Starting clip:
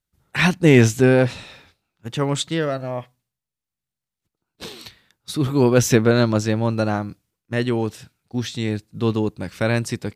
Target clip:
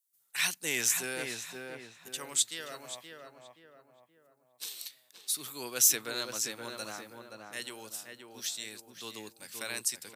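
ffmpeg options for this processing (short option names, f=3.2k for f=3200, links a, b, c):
-filter_complex "[0:a]highpass=83,aderivative,acrossover=split=190|6900[a][b][c];[c]acontrast=53[d];[a][b][d]amix=inputs=3:normalize=0,asplit=2[e][f];[f]adelay=525,lowpass=f=1.6k:p=1,volume=-4dB,asplit=2[g][h];[h]adelay=525,lowpass=f=1.6k:p=1,volume=0.45,asplit=2[i][j];[j]adelay=525,lowpass=f=1.6k:p=1,volume=0.45,asplit=2[k][l];[l]adelay=525,lowpass=f=1.6k:p=1,volume=0.45,asplit=2[m][n];[n]adelay=525,lowpass=f=1.6k:p=1,volume=0.45,asplit=2[o][p];[p]adelay=525,lowpass=f=1.6k:p=1,volume=0.45[q];[e][g][i][k][m][o][q]amix=inputs=7:normalize=0,volume=-1dB"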